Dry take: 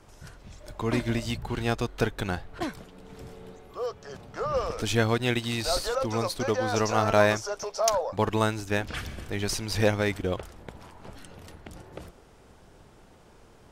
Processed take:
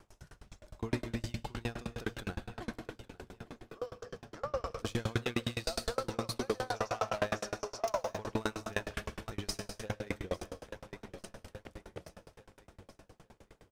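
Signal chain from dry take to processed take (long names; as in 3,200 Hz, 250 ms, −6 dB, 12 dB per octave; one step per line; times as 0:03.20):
0:06.61–0:07.18: low shelf with overshoot 450 Hz −8.5 dB, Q 1.5
0:09.58–0:10.07: noise gate −21 dBFS, range −16 dB
soft clipping −19 dBFS, distortion −12 dB
repeating echo 851 ms, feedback 56%, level −13 dB
reverb whose tail is shaped and stops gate 300 ms flat, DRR 6.5 dB
tremolo with a ramp in dB decaying 9.7 Hz, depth 33 dB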